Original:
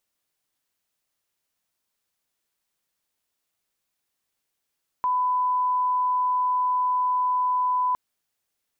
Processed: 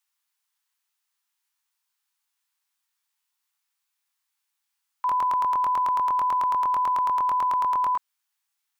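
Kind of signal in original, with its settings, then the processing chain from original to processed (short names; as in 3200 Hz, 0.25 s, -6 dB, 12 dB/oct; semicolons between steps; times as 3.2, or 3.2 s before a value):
line-up tone -20 dBFS 2.91 s
steep high-pass 810 Hz 96 dB/oct; crackling interface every 0.11 s, samples 1024, repeat, from 0.67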